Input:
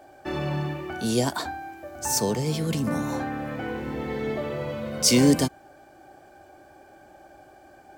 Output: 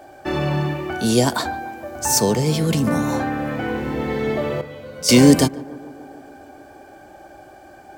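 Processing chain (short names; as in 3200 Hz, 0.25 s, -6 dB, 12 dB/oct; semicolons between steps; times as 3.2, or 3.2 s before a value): 4.61–5.09 resonator 86 Hz, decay 0.31 s, harmonics all, mix 100%; tape echo 0.146 s, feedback 83%, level -18.5 dB, low-pass 1400 Hz; gain +7 dB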